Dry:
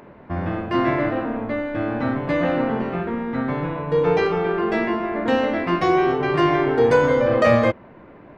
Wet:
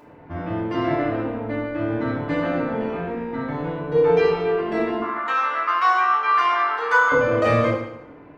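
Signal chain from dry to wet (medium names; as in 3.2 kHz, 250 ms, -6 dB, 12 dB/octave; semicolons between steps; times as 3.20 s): 5.02–7.12 s: resonant high-pass 1.2 kHz, resonance Q 7.8; reverberation RT60 0.85 s, pre-delay 3 ms, DRR -4 dB; trim -7 dB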